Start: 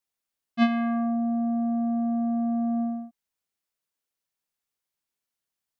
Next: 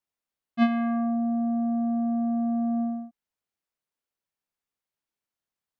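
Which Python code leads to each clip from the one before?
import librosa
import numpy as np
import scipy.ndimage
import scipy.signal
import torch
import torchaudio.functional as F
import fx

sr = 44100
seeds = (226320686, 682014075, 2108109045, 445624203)

y = fx.high_shelf(x, sr, hz=3100.0, db=-8.0)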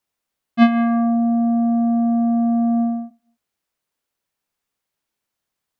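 y = fx.echo_feedback(x, sr, ms=88, feedback_pct=45, wet_db=-20.0)
y = y * 10.0 ** (9.0 / 20.0)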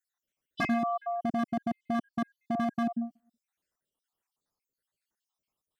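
y = fx.spec_dropout(x, sr, seeds[0], share_pct=65)
y = 10.0 ** (-20.0 / 20.0) * (np.abs((y / 10.0 ** (-20.0 / 20.0) + 3.0) % 4.0 - 2.0) - 1.0)
y = y * 10.0 ** (-3.0 / 20.0)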